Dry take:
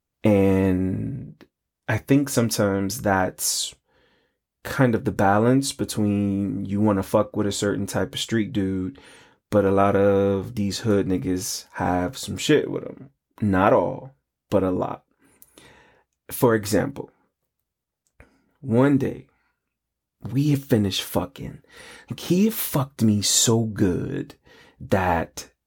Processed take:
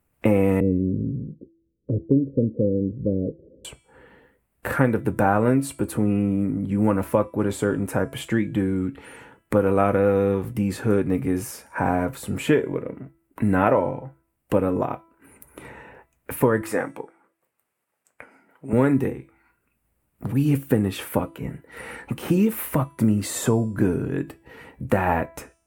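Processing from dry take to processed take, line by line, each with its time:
0:00.60–0:03.65: Butterworth low-pass 540 Hz 96 dB per octave
0:06.04–0:07.22: one half of a high-frequency compander decoder only
0:16.61–0:18.73: meter weighting curve A
whole clip: flat-topped bell 4,700 Hz −12 dB 1.3 octaves; hum removal 330.8 Hz, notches 32; multiband upward and downward compressor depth 40%

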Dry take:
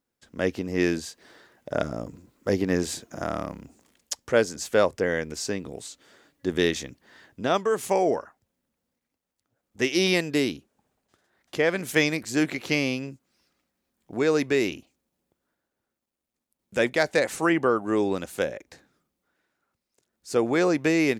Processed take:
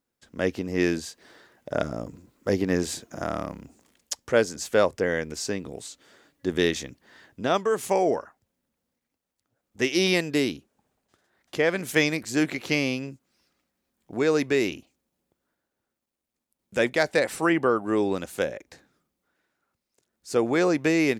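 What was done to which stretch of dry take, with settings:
0:17.12–0:18.09: notch filter 6,600 Hz, Q 7.2

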